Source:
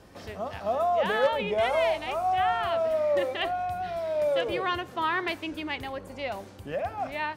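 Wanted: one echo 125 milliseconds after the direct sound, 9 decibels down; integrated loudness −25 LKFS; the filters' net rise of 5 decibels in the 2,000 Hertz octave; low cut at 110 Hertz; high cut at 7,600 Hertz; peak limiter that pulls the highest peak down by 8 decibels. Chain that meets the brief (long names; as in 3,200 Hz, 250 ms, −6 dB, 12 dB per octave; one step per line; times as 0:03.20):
high-pass filter 110 Hz
low-pass filter 7,600 Hz
parametric band 2,000 Hz +6 dB
brickwall limiter −20 dBFS
single-tap delay 125 ms −9 dB
level +3.5 dB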